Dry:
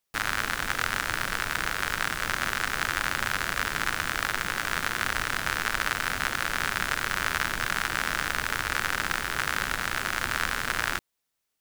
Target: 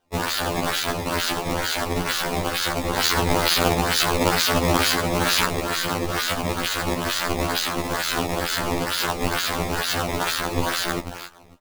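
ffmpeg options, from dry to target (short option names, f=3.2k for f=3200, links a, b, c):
-filter_complex "[0:a]aresample=11025,aresample=44100,bass=f=250:g=-12,treble=f=4k:g=14,asplit=2[a][b];[b]adelay=287,lowpass=f=1.3k:p=1,volume=-10dB,asplit=2[c][d];[d]adelay=287,lowpass=f=1.3k:p=1,volume=0.3,asplit=2[e][f];[f]adelay=287,lowpass=f=1.3k:p=1,volume=0.3[g];[a][c][e][g]amix=inputs=4:normalize=0,alimiter=limit=-17dB:level=0:latency=1:release=33,aexciter=amount=2.8:drive=6.1:freq=3.1k,aeval=exprs='0.211*(abs(mod(val(0)/0.211+3,4)-2)-1)':c=same,asettb=1/sr,asplit=3[h][i][j];[h]atrim=end=2.974[k];[i]atrim=start=2.97:end=5.45,asetpts=PTS-STARTPTS,afade=t=in:d=0.004:c=qsin,afade=t=out:st=2.476:d=0.004:c=qsin,aemphasis=mode=production:type=bsi[l];[j]atrim=start=5.446[m];[k][l]acrossfade=d=0.004:c1=hsin:c2=qsin[n];[n][m]acrossfade=d=0.004:c1=qsin:c2=hsin,acrusher=samples=17:mix=1:aa=0.000001:lfo=1:lforange=27.2:lforate=2.2,afftfilt=real='re*2*eq(mod(b,4),0)':imag='im*2*eq(mod(b,4),0)':win_size=2048:overlap=0.75,volume=8dB"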